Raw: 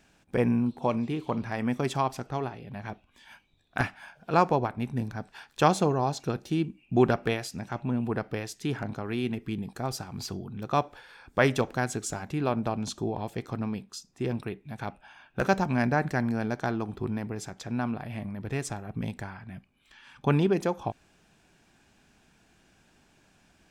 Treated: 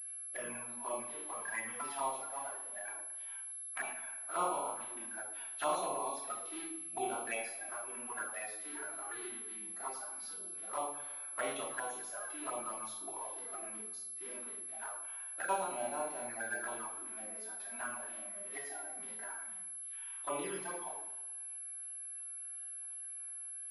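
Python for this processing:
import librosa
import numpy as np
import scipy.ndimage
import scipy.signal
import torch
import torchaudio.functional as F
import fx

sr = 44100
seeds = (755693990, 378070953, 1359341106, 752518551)

y = fx.spec_quant(x, sr, step_db=30)
y = scipy.signal.sosfilt(scipy.signal.butter(2, 1300.0, 'highpass', fs=sr, output='sos'), y)
y = fx.high_shelf(y, sr, hz=2600.0, db=-11.5)
y = fx.doubler(y, sr, ms=28.0, db=-7)
y = fx.room_shoebox(y, sr, seeds[0], volume_m3=360.0, walls='furnished', distance_m=2.9)
y = fx.hpss(y, sr, part='percussive', gain_db=-11)
y = fx.env_flanger(y, sr, rest_ms=8.5, full_db=-33.5)
y = fx.echo_feedback(y, sr, ms=110, feedback_pct=56, wet_db=-14)
y = fx.pwm(y, sr, carrier_hz=11000.0)
y = y * librosa.db_to_amplitude(1.5)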